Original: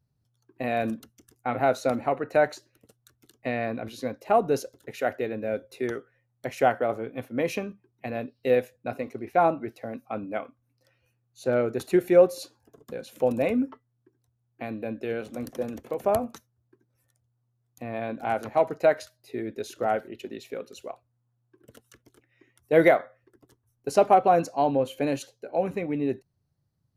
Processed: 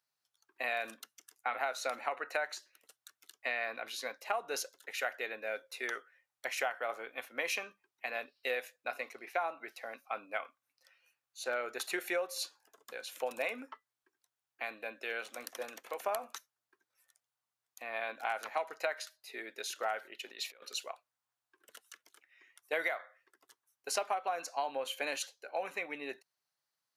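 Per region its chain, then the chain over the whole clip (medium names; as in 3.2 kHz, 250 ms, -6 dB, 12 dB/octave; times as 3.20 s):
20.28–20.84 s: peaking EQ 4.4 kHz +4 dB 0.33 oct + compressor with a negative ratio -41 dBFS, ratio -0.5
whole clip: high-pass 1.2 kHz 12 dB/octave; treble shelf 9.3 kHz -3.5 dB; compression 16:1, threshold -34 dBFS; trim +4 dB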